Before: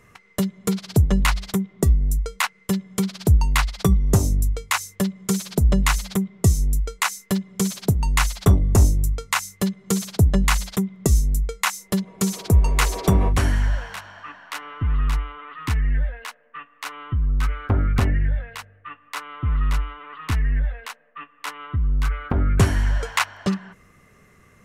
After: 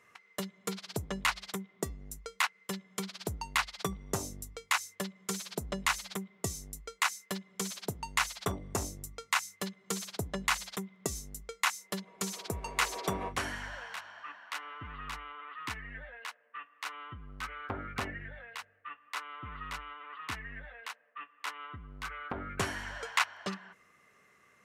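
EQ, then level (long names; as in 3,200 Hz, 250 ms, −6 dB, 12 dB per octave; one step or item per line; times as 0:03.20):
high-pass filter 840 Hz 6 dB per octave
high-shelf EQ 7,000 Hz −7.5 dB
−5.0 dB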